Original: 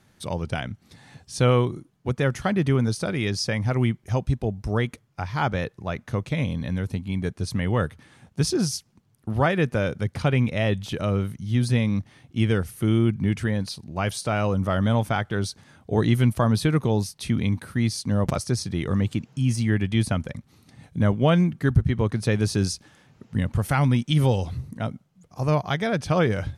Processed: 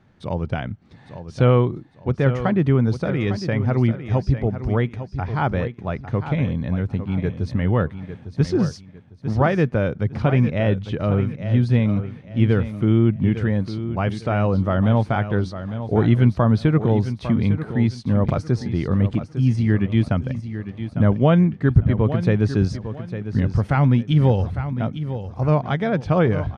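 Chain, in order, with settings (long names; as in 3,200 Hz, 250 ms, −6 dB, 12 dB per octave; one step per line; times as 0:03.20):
head-to-tape spacing loss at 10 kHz 28 dB
on a send: repeating echo 853 ms, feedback 29%, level −11 dB
on the sum: level +4.5 dB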